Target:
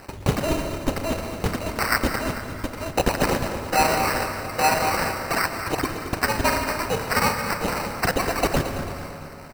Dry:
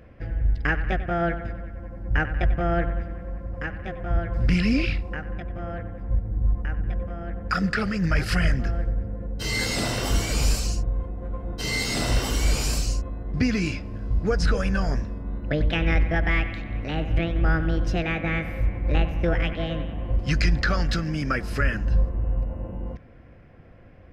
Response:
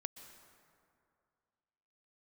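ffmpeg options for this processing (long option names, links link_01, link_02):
-filter_complex "[0:a]lowpass=2900,equalizer=frequency=120:width_type=o:width=1.5:gain=-13,bandreject=frequency=50:width_type=h:width=6,bandreject=frequency=100:width_type=h:width=6,bandreject=frequency=150:width_type=h:width=6,bandreject=frequency=200:width_type=h:width=6,bandreject=frequency=250:width_type=h:width=6,bandreject=frequency=300:width_type=h:width=6,areverse,acompressor=threshold=-37dB:ratio=8,areverse,asetrate=111573,aresample=44100,aeval=exprs='sgn(val(0))*max(abs(val(0))-0.00168,0)':channel_layout=same,asetrate=35002,aresample=44100,atempo=1.25992,aexciter=amount=9.2:drive=7.6:freq=2100,acrusher=samples=13:mix=1:aa=0.000001,aecho=1:1:223|446|669|892|1115:0.282|0.127|0.0571|0.0257|0.0116[link_01];[1:a]atrim=start_sample=2205[link_02];[link_01][link_02]afir=irnorm=-1:irlink=0,volume=4.5dB"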